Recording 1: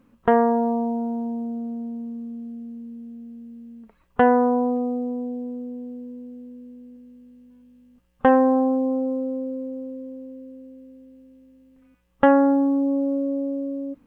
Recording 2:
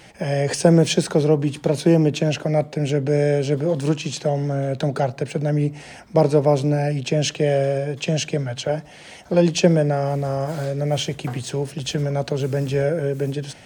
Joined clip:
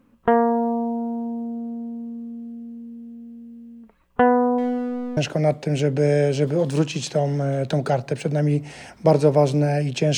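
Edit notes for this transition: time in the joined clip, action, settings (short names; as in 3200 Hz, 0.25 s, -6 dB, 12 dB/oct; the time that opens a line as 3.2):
recording 1
4.58–5.17 backlash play -27.5 dBFS
5.17 switch to recording 2 from 2.27 s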